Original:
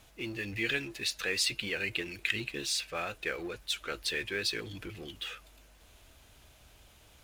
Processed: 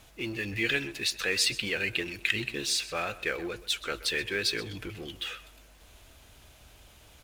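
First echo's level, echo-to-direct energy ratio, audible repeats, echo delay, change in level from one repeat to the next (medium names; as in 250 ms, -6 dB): -17.0 dB, -17.0 dB, 2, 127 ms, -12.0 dB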